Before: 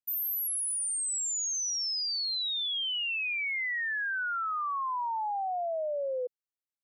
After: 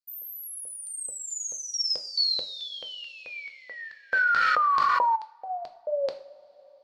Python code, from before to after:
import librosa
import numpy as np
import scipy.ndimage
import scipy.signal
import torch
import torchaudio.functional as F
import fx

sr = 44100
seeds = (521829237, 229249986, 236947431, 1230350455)

y = fx.comb(x, sr, ms=6.2, depth=0.76, at=(0.91, 1.94))
y = fx.filter_lfo_highpass(y, sr, shape='square', hz=2.3, low_hz=530.0, high_hz=4500.0, q=7.5)
y = fx.rev_double_slope(y, sr, seeds[0], early_s=0.45, late_s=4.1, knee_db=-21, drr_db=5.5)
y = fx.env_flatten(y, sr, amount_pct=100, at=(4.12, 5.15), fade=0.02)
y = F.gain(torch.from_numpy(y), -8.5).numpy()